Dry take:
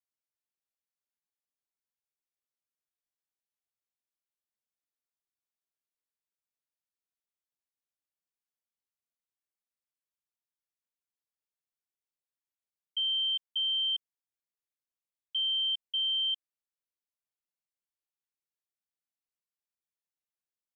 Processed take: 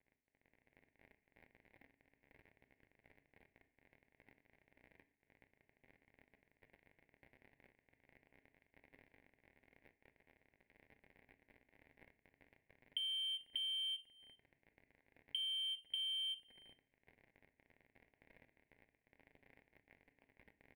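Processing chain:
running median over 9 samples
parametric band 3,000 Hz +4 dB 0.77 octaves
in parallel at −7 dB: hard clipping −38.5 dBFS, distortion −11 dB
on the sum: far-end echo of a speakerphone 390 ms, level −29 dB
surface crackle 44 per second −56 dBFS
drawn EQ curve 1,500 Hz 0 dB, 2,100 Hz +4 dB, 3,000 Hz −18 dB, 4,200 Hz −25 dB
downward compressor 12 to 1, threshold −59 dBFS, peak gain reduction 13 dB
phaser with its sweep stopped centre 3,000 Hz, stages 4
on a send at −10 dB: convolution reverb RT60 0.45 s, pre-delay 4 ms
on the sum: automatic gain control gain up to 10 dB
every ending faded ahead of time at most 330 dB per second
level +10 dB

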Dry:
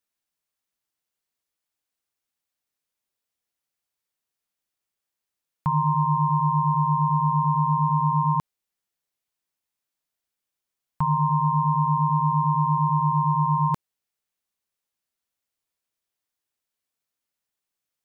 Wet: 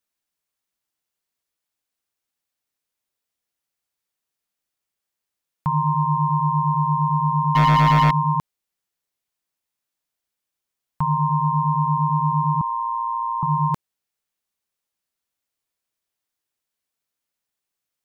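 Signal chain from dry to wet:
0:07.55–0:08.11: leveller curve on the samples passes 3
0:12.61–0:13.43: Bessel high-pass filter 780 Hz, order 8
level +1.5 dB

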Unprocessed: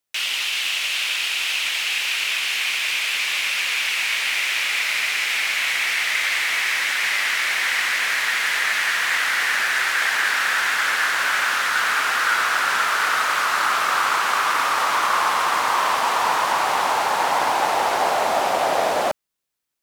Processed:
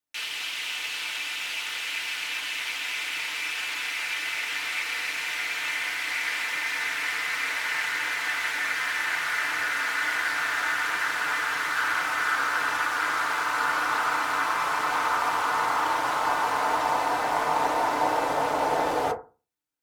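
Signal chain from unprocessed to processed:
ring modulation 120 Hz
feedback delay network reverb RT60 0.32 s, low-frequency decay 1.25×, high-frequency decay 0.35×, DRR −2.5 dB
level −7.5 dB

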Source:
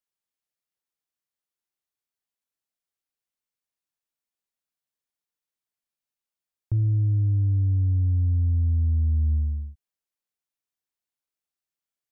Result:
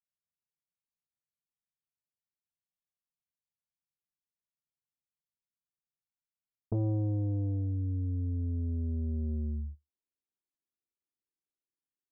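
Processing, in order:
parametric band 74 Hz +3.5 dB 0.32 octaves
downward compressor 10 to 1, threshold −21 dBFS, peak gain reduction 4.5 dB
low-pass filter sweep 160 Hz → 350 Hz, 0:06.88–0:07.79
saturating transformer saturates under 290 Hz
level −6 dB

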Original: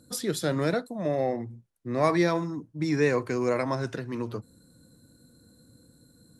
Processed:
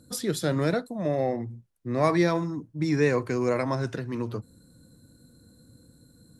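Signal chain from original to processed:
low-shelf EQ 150 Hz +5.5 dB

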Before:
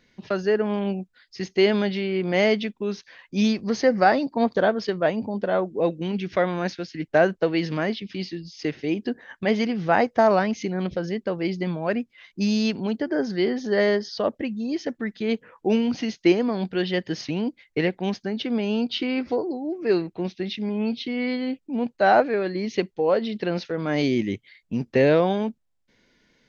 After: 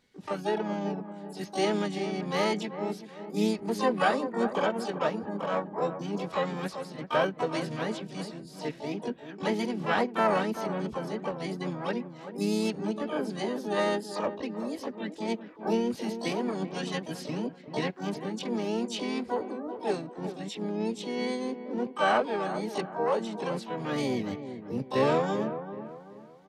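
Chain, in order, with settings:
notch comb filter 350 Hz
pitch-shifted copies added −3 semitones −10 dB, +7 semitones −7 dB, +12 semitones −6 dB
delay with a low-pass on its return 385 ms, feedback 36%, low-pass 1,500 Hz, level −10 dB
level −8 dB

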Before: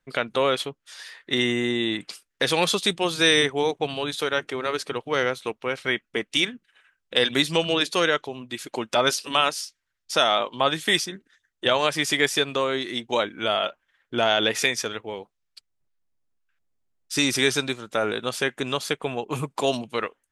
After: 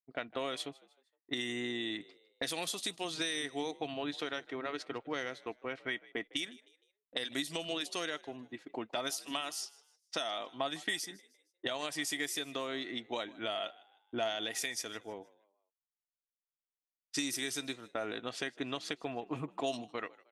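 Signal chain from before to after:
first-order pre-emphasis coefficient 0.9
tape wow and flutter 17 cents
tilt shelving filter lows +4 dB, about 1,400 Hz
low-pass that shuts in the quiet parts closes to 570 Hz, open at −30.5 dBFS
downward compressor 6 to 1, threshold −38 dBFS, peak gain reduction 12.5 dB
hollow resonant body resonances 290/680/1,900 Hz, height 9 dB, ringing for 45 ms
downward expander −47 dBFS
echo with shifted repeats 155 ms, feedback 38%, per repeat +58 Hz, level −22 dB
level +3.5 dB

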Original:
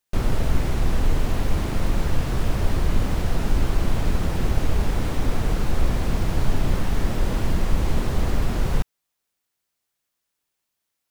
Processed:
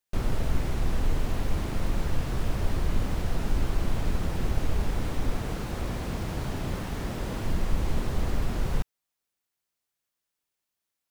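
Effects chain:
0:05.36–0:07.45: high-pass filter 69 Hz 6 dB per octave
level −5.5 dB

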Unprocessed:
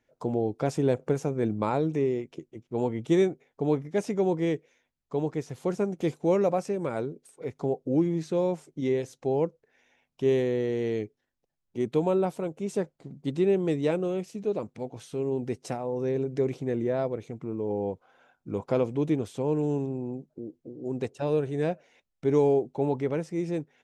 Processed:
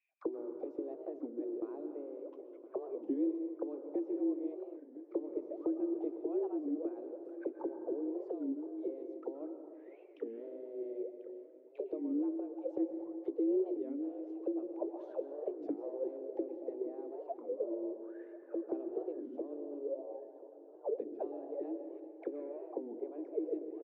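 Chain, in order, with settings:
low-pass filter 5,000 Hz
gain on a spectral selection 0:00.51–0:00.81, 470–1,700 Hz −14 dB
high-pass filter 150 Hz 12 dB per octave
harmonic and percussive parts rebalanced percussive +5 dB
in parallel at −2 dB: speech leveller within 5 dB 0.5 s
on the sum: frequency shifter +140 Hz
envelope filter 330–2,500 Hz, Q 21, down, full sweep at −18.5 dBFS
repeating echo 1,016 ms, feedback 43%, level −16 dB
on a send at −7 dB: convolution reverb RT60 2.1 s, pre-delay 113 ms
on the sum: wow of a warped record 33 1/3 rpm, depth 250 cents
level −2.5 dB

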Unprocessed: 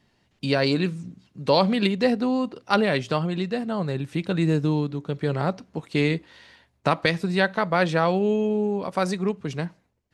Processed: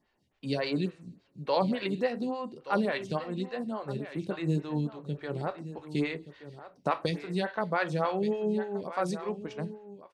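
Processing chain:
single-tap delay 1,175 ms −13.5 dB
coupled-rooms reverb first 0.32 s, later 1.9 s, from −28 dB, DRR 9 dB
phaser with staggered stages 3.5 Hz
level −6 dB

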